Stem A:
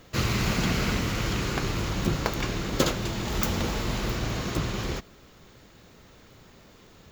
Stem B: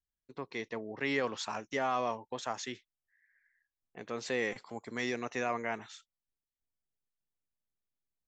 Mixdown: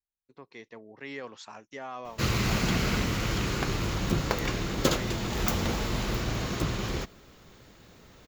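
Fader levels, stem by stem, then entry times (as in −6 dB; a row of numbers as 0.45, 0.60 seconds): −1.0, −7.5 decibels; 2.05, 0.00 seconds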